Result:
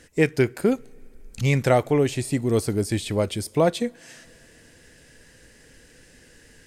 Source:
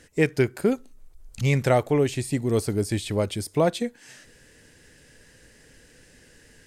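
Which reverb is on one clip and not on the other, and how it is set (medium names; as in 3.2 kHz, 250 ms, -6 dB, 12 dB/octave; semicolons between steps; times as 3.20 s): two-slope reverb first 0.21 s, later 4 s, from -22 dB, DRR 20 dB; trim +1.5 dB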